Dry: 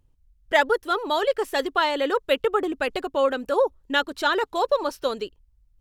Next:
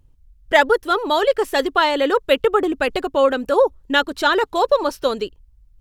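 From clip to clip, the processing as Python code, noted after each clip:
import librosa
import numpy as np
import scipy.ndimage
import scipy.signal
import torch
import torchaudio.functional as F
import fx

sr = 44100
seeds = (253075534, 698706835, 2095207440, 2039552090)

y = fx.low_shelf(x, sr, hz=220.0, db=4.5)
y = y * librosa.db_to_amplitude(5.0)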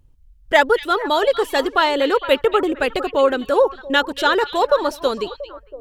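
y = fx.echo_stepped(x, sr, ms=228, hz=3300.0, octaves=-1.4, feedback_pct=70, wet_db=-9.0)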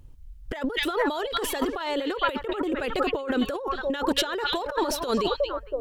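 y = fx.over_compress(x, sr, threshold_db=-26.0, ratio=-1.0)
y = y * librosa.db_to_amplitude(-1.5)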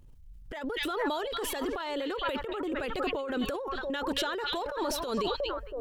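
y = fx.transient(x, sr, attack_db=-6, sustain_db=6)
y = y * librosa.db_to_amplitude(-5.0)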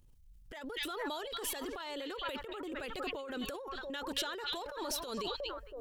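y = fx.high_shelf(x, sr, hz=2800.0, db=9.0)
y = y * librosa.db_to_amplitude(-9.0)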